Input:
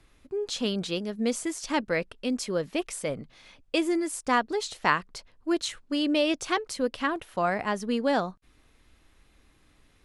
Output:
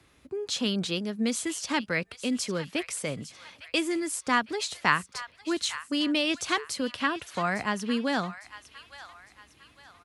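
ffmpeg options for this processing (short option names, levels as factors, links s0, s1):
-filter_complex "[0:a]highpass=f=63:w=0.5412,highpass=f=63:w=1.3066,acrossover=split=280|1000[s0][s1][s2];[s1]acompressor=threshold=0.0126:ratio=6[s3];[s2]aecho=1:1:855|1710|2565|3420:0.211|0.0867|0.0355|0.0146[s4];[s0][s3][s4]amix=inputs=3:normalize=0,volume=1.33"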